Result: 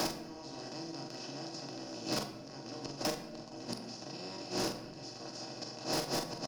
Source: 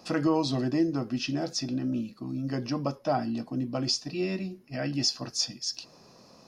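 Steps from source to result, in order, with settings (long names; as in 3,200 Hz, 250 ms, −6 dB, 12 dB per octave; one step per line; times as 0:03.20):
compressor on every frequency bin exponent 0.2
high-pass filter 100 Hz 12 dB per octave
mains-hum notches 50/100/150/200/250/300/350 Hz
transient designer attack −7 dB, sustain −11 dB
gate with flip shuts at −13 dBFS, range −35 dB
gain into a clipping stage and back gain 30.5 dB
double-tracking delay 43 ms −6.5 dB
rectangular room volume 180 cubic metres, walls mixed, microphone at 0.45 metres
multiband upward and downward compressor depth 70%
level +2 dB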